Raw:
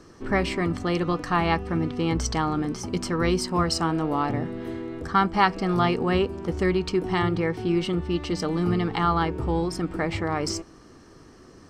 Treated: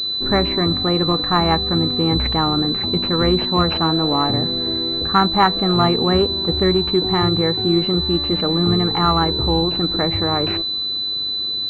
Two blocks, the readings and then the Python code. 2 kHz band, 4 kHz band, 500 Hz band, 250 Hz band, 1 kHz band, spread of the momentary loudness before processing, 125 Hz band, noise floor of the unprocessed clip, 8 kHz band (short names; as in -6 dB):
+2.0 dB, +19.0 dB, +6.0 dB, +6.0 dB, +5.5 dB, 5 LU, +6.0 dB, -50 dBFS, under -15 dB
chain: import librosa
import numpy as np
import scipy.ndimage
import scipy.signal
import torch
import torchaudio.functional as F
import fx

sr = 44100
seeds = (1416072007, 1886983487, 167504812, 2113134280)

y = fx.wow_flutter(x, sr, seeds[0], rate_hz=2.1, depth_cents=21.0)
y = fx.pwm(y, sr, carrier_hz=4000.0)
y = F.gain(torch.from_numpy(y), 6.0).numpy()